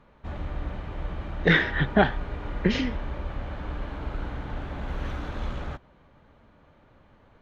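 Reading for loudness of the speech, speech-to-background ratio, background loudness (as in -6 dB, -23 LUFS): -24.5 LUFS, 11.0 dB, -35.5 LUFS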